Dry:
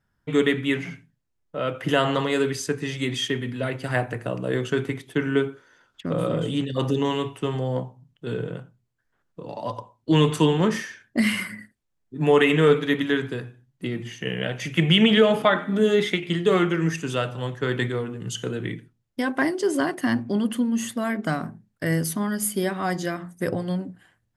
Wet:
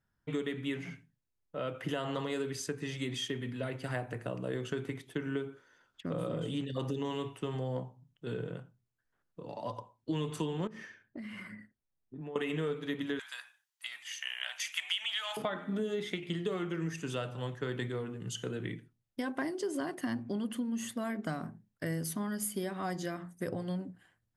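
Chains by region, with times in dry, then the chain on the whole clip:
0:10.67–0:12.36: low-pass filter 1,400 Hz 6 dB per octave + downward compressor 8 to 1, threshold −32 dBFS
0:13.19–0:15.37: inverse Chebyshev high-pass filter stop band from 430 Hz + high-shelf EQ 2,200 Hz +11 dB
whole clip: dynamic equaliser 1,900 Hz, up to −3 dB, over −33 dBFS, Q 0.91; downward compressor 6 to 1, threshold −23 dBFS; level −8 dB

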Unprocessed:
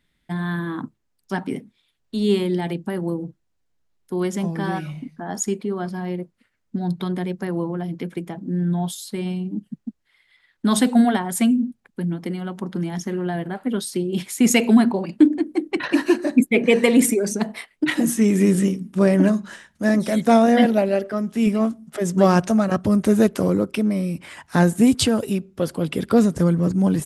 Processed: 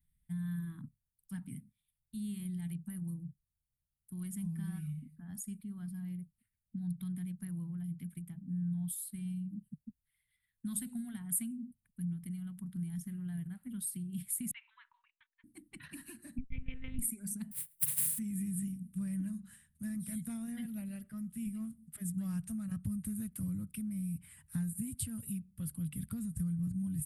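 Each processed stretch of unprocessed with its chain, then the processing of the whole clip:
0:14.51–0:15.44: Chebyshev band-pass filter 940–3,800 Hz, order 5 + noise gate −47 dBFS, range −10 dB + high-frequency loss of the air 210 metres
0:16.38–0:16.99: one-pitch LPC vocoder at 8 kHz 260 Hz + one half of a high-frequency compander decoder only
0:17.51–0:18.17: compressing power law on the bin magnitudes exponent 0.16 + high-pass filter 89 Hz + comb filter 6.7 ms, depth 73%
whole clip: guitar amp tone stack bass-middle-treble 6-0-2; downward compressor, threshold −38 dBFS; drawn EQ curve 150 Hz 0 dB, 250 Hz −9 dB, 390 Hz −27 dB, 630 Hz −17 dB, 980 Hz −15 dB, 2,000 Hz −13 dB, 6,200 Hz −20 dB, 9,200 Hz +4 dB; level +8.5 dB

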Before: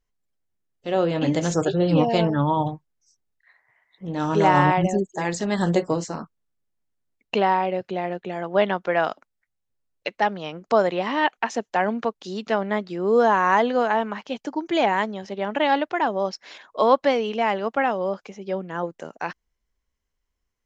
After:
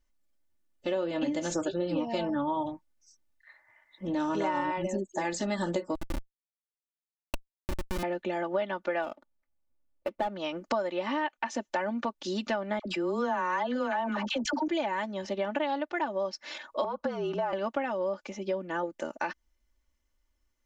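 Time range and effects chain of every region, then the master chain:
0:05.95–0:08.03: low-shelf EQ 240 Hz +12 dB + compressor whose output falls as the input rises −23 dBFS, ratio −0.5 + comparator with hysteresis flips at −18 dBFS
0:09.02–0:10.36: running median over 25 samples + high-shelf EQ 3,200 Hz −11 dB
0:12.79–0:14.68: noise gate −40 dBFS, range −26 dB + all-pass dispersion lows, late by 66 ms, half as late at 960 Hz + level that may fall only so fast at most 30 dB per second
0:16.84–0:17.53: frequency shifter −43 Hz + high shelf with overshoot 1,700 Hz −6.5 dB, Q 3 + downward compressor 4 to 1, threshold −21 dBFS
whole clip: comb filter 3.4 ms, depth 78%; downward compressor 6 to 1, threshold −28 dBFS

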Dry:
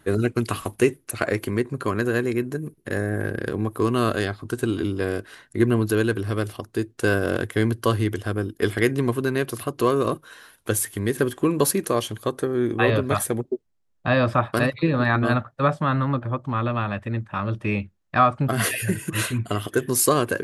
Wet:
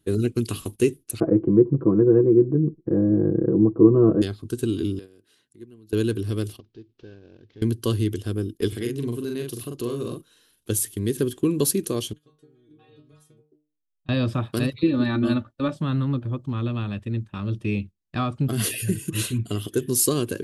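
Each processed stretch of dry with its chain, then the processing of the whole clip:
0:01.20–0:04.22: low-pass filter 1,100 Hz 24 dB per octave + parametric band 300 Hz +7.5 dB 2.7 octaves + comb filter 6.1 ms, depth 86%
0:04.99–0:05.93: high-pass filter 160 Hz 6 dB per octave + downward compressor 2.5 to 1, threshold −43 dBFS
0:06.59–0:07.62: variable-slope delta modulation 32 kbit/s + low-pass filter 3,600 Hz + downward compressor, threshold −34 dBFS
0:08.68–0:10.70: double-tracking delay 42 ms −4 dB + downward compressor 1.5 to 1, threshold −33 dBFS
0:12.13–0:14.09: downward compressor 5 to 1, threshold −22 dBFS + high-frequency loss of the air 62 metres + stiff-string resonator 150 Hz, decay 0.38 s, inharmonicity 0.002
0:14.83–0:15.76: high-shelf EQ 8,800 Hz −9 dB + comb filter 3.4 ms, depth 67%
whole clip: noise gate −35 dBFS, range −10 dB; flat-topped bell 1,100 Hz −12.5 dB 2.3 octaves

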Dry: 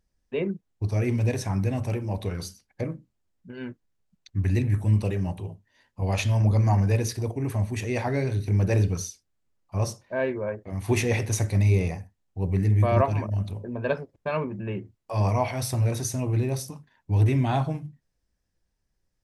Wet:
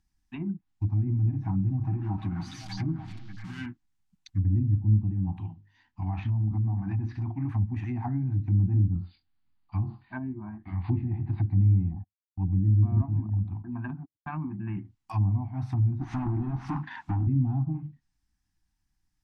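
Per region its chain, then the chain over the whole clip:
0:01.06–0:03.66: converter with a step at zero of −38.5 dBFS + comb filter 6.3 ms, depth 50% + echo through a band-pass that steps 297 ms, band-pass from 3,900 Hz, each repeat −1.4 octaves, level −3 dB
0:05.49–0:07.49: mains-hum notches 50/100/150/200/250/300/350/400/450 Hz + downward compressor 2.5 to 1, threshold −24 dBFS + high-frequency loss of the air 140 metres
0:08.93–0:11.41: linear-phase brick-wall low-pass 4,900 Hz + double-tracking delay 23 ms −6 dB
0:11.93–0:14.77: high-pass filter 41 Hz 24 dB per octave + low-pass that shuts in the quiet parts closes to 480 Hz, open at −19.5 dBFS + noise gate −39 dBFS, range −34 dB
0:16.01–0:17.27: downward compressor 2 to 1, threshold −29 dBFS + mid-hump overdrive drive 36 dB, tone 1,300 Hz, clips at −19 dBFS
whole clip: treble cut that deepens with the level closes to 320 Hz, closed at −21.5 dBFS; elliptic band-stop filter 320–760 Hz, stop band 50 dB

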